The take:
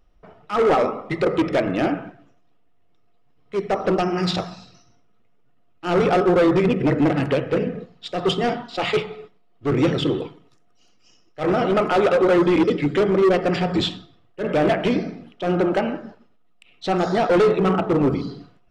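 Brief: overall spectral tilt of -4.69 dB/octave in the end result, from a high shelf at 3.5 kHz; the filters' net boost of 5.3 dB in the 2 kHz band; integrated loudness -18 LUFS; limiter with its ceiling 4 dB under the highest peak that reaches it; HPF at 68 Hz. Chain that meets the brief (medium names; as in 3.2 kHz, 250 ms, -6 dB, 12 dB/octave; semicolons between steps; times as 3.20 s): high-pass 68 Hz; peaking EQ 2 kHz +8.5 dB; treble shelf 3.5 kHz -6.5 dB; trim +3.5 dB; peak limiter -7.5 dBFS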